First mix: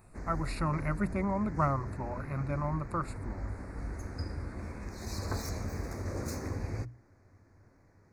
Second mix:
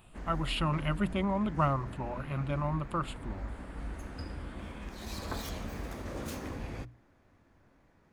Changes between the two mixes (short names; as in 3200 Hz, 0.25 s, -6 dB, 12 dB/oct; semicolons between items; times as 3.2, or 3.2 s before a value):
background: add fifteen-band EQ 100 Hz -11 dB, 400 Hz -4 dB, 6300 Hz -5 dB; master: remove Chebyshev band-stop 2200–4400 Hz, order 2